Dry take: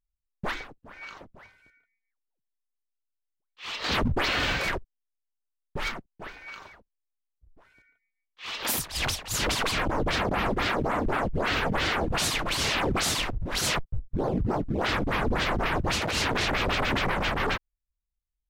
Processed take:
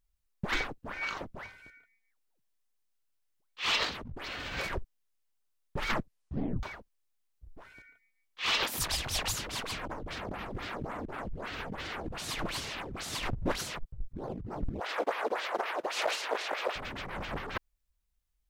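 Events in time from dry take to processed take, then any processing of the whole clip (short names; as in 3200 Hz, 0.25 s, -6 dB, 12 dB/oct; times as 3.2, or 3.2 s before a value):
5.9 tape stop 0.73 s
14.8–16.76 HPF 480 Hz 24 dB/oct
whole clip: negative-ratio compressor -33 dBFS, ratio -0.5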